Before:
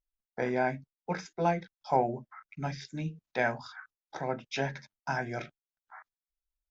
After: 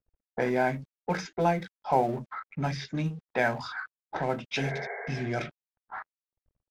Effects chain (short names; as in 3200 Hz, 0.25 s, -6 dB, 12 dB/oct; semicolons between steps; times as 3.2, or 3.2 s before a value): G.711 law mismatch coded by mu; spectral repair 4.61–5.22, 390–2300 Hz both; in parallel at +3 dB: compressor 12:1, threshold -39 dBFS, peak gain reduction 19.5 dB; on the sum: low-pass opened by the level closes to 600 Hz, open at -24.5 dBFS